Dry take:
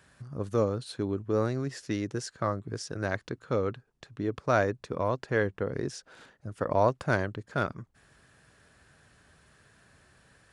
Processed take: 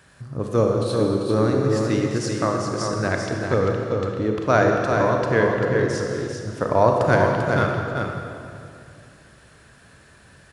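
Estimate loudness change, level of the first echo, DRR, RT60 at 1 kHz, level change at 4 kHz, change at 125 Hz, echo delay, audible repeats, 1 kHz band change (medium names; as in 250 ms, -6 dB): +9.5 dB, -5.5 dB, -0.5 dB, 2.3 s, +9.5 dB, +10.0 dB, 393 ms, 1, +10.0 dB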